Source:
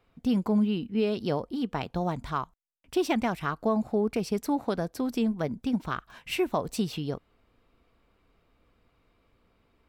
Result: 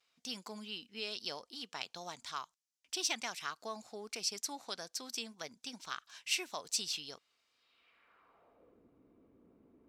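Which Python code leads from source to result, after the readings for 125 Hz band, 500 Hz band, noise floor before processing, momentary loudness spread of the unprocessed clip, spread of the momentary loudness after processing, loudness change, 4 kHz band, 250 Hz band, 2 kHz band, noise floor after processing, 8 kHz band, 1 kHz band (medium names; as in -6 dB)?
-27.0 dB, -18.5 dB, -69 dBFS, 8 LU, 10 LU, -10.5 dB, +2.5 dB, -24.5 dB, -4.5 dB, -83 dBFS, +7.0 dB, -12.0 dB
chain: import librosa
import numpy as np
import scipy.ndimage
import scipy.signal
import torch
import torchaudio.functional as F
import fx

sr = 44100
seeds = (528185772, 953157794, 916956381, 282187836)

y = fx.vibrato(x, sr, rate_hz=0.4, depth_cents=17.0)
y = fx.filter_sweep_bandpass(y, sr, from_hz=5900.0, to_hz=290.0, start_s=7.52, end_s=8.87, q=1.8)
y = y * 10.0 ** (9.0 / 20.0)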